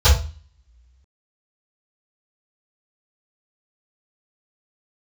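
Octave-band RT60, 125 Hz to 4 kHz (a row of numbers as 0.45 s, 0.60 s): 0.55 s, 0.55 s, 0.35 s, 0.35 s, 0.35 s, 0.40 s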